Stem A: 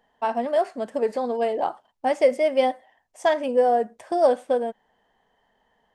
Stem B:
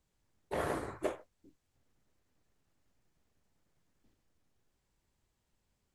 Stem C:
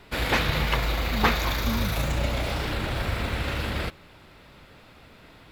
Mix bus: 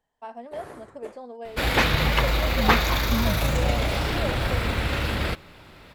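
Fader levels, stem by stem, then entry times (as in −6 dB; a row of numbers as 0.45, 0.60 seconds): −14.0, −7.0, +3.0 decibels; 0.00, 0.00, 1.45 seconds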